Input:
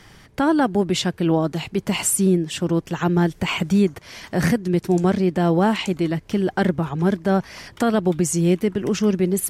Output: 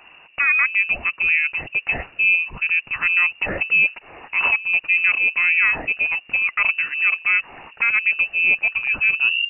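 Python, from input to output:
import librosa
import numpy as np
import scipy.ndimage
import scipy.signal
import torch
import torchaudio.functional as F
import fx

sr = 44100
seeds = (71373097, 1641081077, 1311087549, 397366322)

y = fx.tape_stop_end(x, sr, length_s=0.37)
y = fx.freq_invert(y, sr, carrier_hz=2800)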